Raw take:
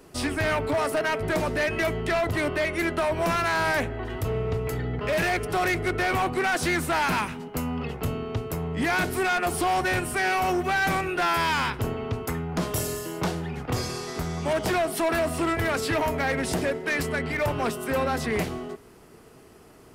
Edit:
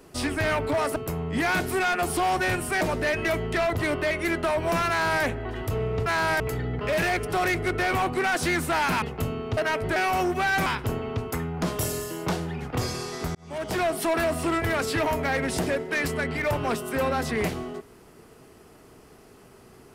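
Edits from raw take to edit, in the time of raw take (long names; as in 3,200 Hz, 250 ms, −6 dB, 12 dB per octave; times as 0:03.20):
0:00.96–0:01.35: swap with 0:08.40–0:10.25
0:03.43–0:03.77: duplicate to 0:04.60
0:07.22–0:07.85: remove
0:10.95–0:11.61: remove
0:14.30–0:14.82: fade in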